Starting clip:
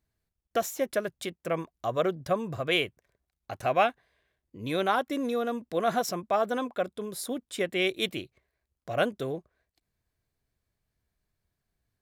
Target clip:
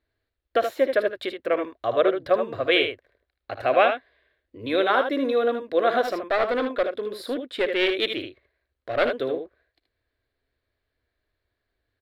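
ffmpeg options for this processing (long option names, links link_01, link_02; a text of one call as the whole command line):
ffmpeg -i in.wav -filter_complex "[0:a]highshelf=frequency=2200:gain=-9,aecho=1:1:58|77:0.15|0.422,asettb=1/sr,asplit=3[link_01][link_02][link_03];[link_01]atrim=end=6.044[link_04];[link_02]atrim=start=6.04:end=9.15,asetpts=PTS-STARTPTS,afade=type=in:duration=0.004:curve=qsin,afade=type=out:start_time=3.106:duration=0.004:curve=qsin,aeval=exprs='clip(val(0),-1,0.0355)':channel_layout=same[link_05];[link_03]atrim=start=9.146[link_06];[link_04][link_05]acrossfade=duration=0.004:curve1=hsin:curve2=qsin[link_07];[link_07][link_06]acrossfade=duration=0.004:curve1=qsin:curve2=hsin,firequalizer=gain_entry='entry(110,0);entry(160,-16);entry(260,4);entry(540,9);entry(810,2);entry(1700,12);entry(2500,9);entry(4100,13);entry(6100,-7);entry(11000,-2)':delay=0.05:min_phase=1" out.wav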